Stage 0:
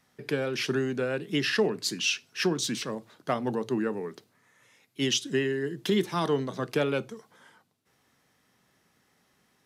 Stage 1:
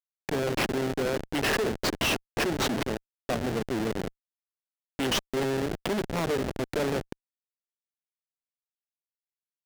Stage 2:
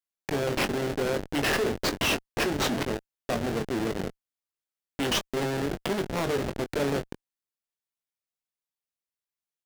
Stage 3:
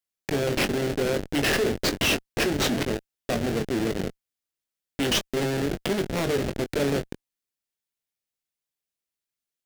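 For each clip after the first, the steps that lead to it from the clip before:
feedback delay with all-pass diffusion 676 ms, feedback 57%, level −14.5 dB; comparator with hysteresis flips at −28 dBFS; mid-hump overdrive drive 35 dB, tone 7,300 Hz, clips at −23 dBFS; level +2 dB
double-tracking delay 21 ms −8.5 dB
parametric band 1,000 Hz −6 dB 1 octave; in parallel at −6 dB: floating-point word with a short mantissa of 2 bits

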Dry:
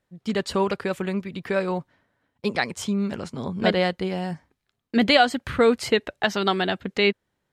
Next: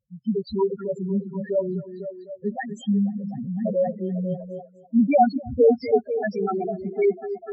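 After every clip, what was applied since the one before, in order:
spectral peaks only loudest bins 2
echo through a band-pass that steps 248 ms, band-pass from 280 Hz, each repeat 0.7 octaves, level −7 dB
level +4 dB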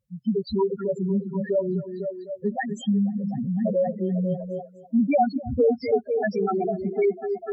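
downward compressor 2 to 1, threshold −26 dBFS, peak gain reduction 8 dB
level +3.5 dB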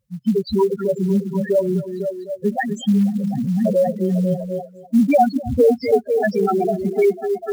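floating-point word with a short mantissa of 4 bits
level +6 dB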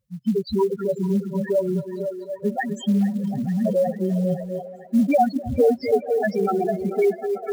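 delay with a band-pass on its return 442 ms, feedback 73%, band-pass 1,100 Hz, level −15 dB
level −3.5 dB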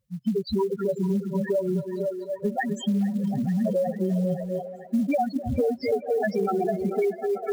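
downward compressor, threshold −21 dBFS, peak gain reduction 8 dB

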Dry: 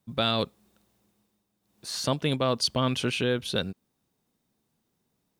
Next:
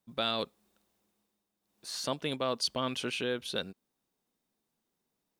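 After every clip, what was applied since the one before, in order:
parametric band 100 Hz −11 dB 1.8 octaves
level −5 dB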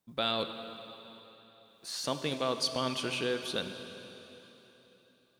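dense smooth reverb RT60 3.7 s, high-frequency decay 0.95×, DRR 7 dB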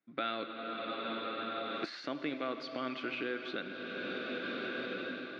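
camcorder AGC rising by 34 dB per second
loudspeaker in its box 240–3,400 Hz, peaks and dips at 300 Hz +9 dB, 480 Hz −4 dB, 940 Hz −9 dB, 1,400 Hz +7 dB, 2,100 Hz +7 dB, 3,100 Hz −6 dB
level −4.5 dB

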